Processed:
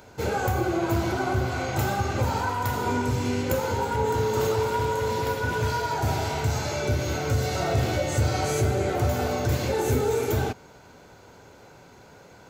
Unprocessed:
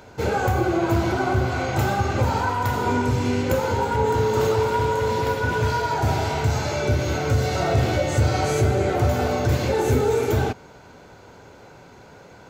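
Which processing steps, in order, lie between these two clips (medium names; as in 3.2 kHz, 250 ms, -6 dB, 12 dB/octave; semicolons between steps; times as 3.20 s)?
treble shelf 6.5 kHz +7.5 dB; trim -4 dB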